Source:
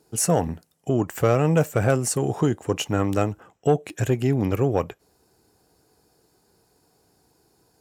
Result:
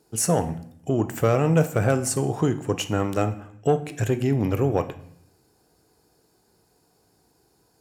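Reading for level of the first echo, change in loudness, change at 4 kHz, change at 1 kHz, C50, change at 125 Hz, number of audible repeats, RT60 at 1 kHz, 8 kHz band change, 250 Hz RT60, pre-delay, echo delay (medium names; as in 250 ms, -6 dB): no echo, -0.5 dB, -0.5 dB, -0.5 dB, 14.0 dB, -0.5 dB, no echo, 0.65 s, -1.0 dB, 0.85 s, 18 ms, no echo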